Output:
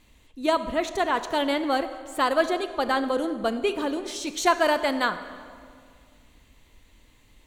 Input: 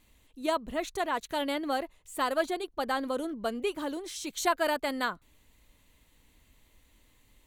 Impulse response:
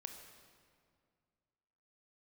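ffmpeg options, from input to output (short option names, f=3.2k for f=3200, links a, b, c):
-filter_complex "[0:a]asplit=2[a][b];[1:a]atrim=start_sample=2205,lowpass=8.5k[c];[b][c]afir=irnorm=-1:irlink=0,volume=5.5dB[d];[a][d]amix=inputs=2:normalize=0"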